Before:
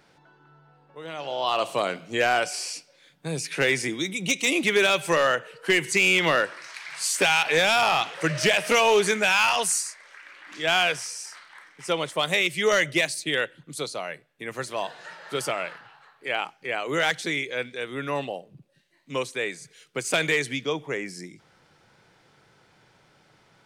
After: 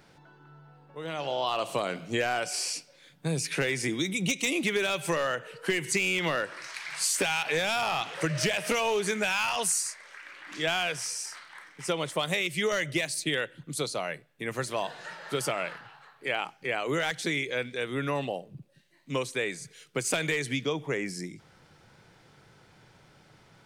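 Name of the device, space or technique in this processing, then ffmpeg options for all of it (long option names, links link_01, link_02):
ASMR close-microphone chain: -af "lowshelf=frequency=190:gain=7.5,acompressor=threshold=-25dB:ratio=6,highshelf=frequency=8700:gain=3.5"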